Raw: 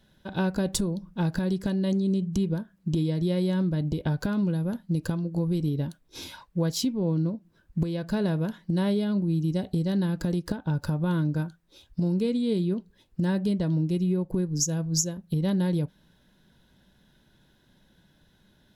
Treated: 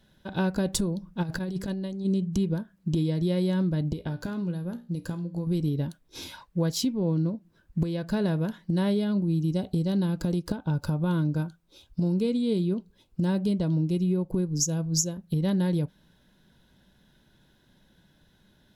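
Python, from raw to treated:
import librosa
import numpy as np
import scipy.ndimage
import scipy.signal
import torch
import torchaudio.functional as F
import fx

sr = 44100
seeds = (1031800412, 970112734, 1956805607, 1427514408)

y = fx.over_compress(x, sr, threshold_db=-29.0, ratio=-0.5, at=(1.22, 2.04), fade=0.02)
y = fx.comb_fb(y, sr, f0_hz=59.0, decay_s=0.35, harmonics='all', damping=0.0, mix_pct=60, at=(3.93, 5.47))
y = fx.peak_eq(y, sr, hz=1800.0, db=-10.0, octaves=0.21, at=(9.12, 15.14))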